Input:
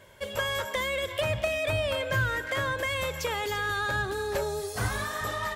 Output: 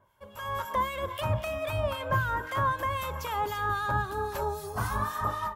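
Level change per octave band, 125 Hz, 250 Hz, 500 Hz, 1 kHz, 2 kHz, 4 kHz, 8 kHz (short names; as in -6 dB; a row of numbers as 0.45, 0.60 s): +0.5, -0.5, -4.0, +4.5, -5.5, -8.5, -7.5 dB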